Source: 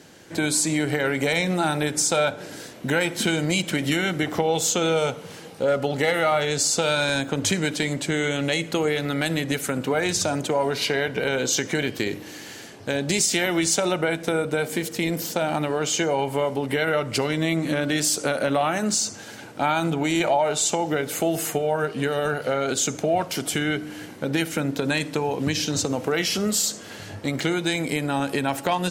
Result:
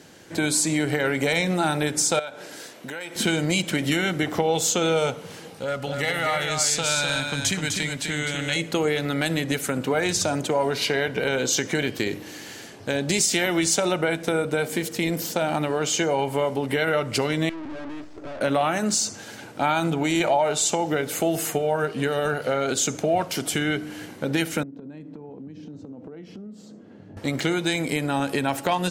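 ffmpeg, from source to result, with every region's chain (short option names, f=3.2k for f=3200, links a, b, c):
-filter_complex "[0:a]asettb=1/sr,asplit=3[a][b][c];[a]atrim=end=2.194[d];[b]atrim=start=2.19:end=3.16,asetpts=PTS-STARTPTS,afade=t=in:d=0.004:c=qsin,afade=t=out:st=0.966:d=0.004:c=qsin,highpass=f=460:p=1,acompressor=threshold=-33dB:ratio=3:attack=3.2:release=140:knee=1:detection=peak[e];[c]atrim=start=3.156[f];[d][e]acrossfade=d=0.004:c1=hsin:c2=qsin[g];[g][f]acrossfade=d=0.004:c1=qsin:c2=hsin,asettb=1/sr,asplit=3[h][i][j];[h]atrim=end=5.594[k];[i]atrim=start=5.59:end=8.56,asetpts=PTS-STARTPTS,afade=t=in:d=0.004:c=qsin,afade=t=out:st=2.966:d=0.004:c=qsin,equalizer=f=410:w=0.65:g=-9,aecho=1:1:253:0.562,atrim=end_sample=130977[l];[j]atrim=start=8.556[m];[k][l]acrossfade=d=0.004:c1=hsin:c2=qsin[n];[n][m]acrossfade=d=0.004:c1=qsin:c2=hsin,asettb=1/sr,asplit=3[o][p][q];[o]atrim=end=17.494[r];[p]atrim=start=17.49:end=18.41,asetpts=PTS-STARTPTS,afade=t=in:d=0.004:c=qsin,afade=t=out:st=0.916:d=0.004:c=qsin,aecho=1:1:3.1:0.61,atrim=end_sample=40572,aeval=exprs='(tanh(44.7*val(0)+0.5)-tanh(0.5))/44.7':c=same,adynamicsmooth=sensitivity=4:basefreq=710[s];[q]atrim=start=18.406[t];[r][s]acrossfade=d=0.004:c1=hsin:c2=qsin[u];[u][t]acrossfade=d=0.004:c1=qsin:c2=hsin,asettb=1/sr,asplit=3[v][w][x];[v]atrim=end=24.634[y];[w]atrim=start=24.63:end=27.17,asetpts=PTS-STARTPTS,afade=t=in:d=0.004:c=qsin,afade=t=out:st=2.536:d=0.004:c=qsin,bandpass=f=230:t=q:w=1.4,acompressor=threshold=-36dB:ratio=8:attack=3.2:release=140:knee=1:detection=peak[z];[x]atrim=start=27.166[aa];[y][z]acrossfade=d=0.004:c1=hsin:c2=qsin[ab];[ab][aa]acrossfade=d=0.004:c1=qsin:c2=hsin"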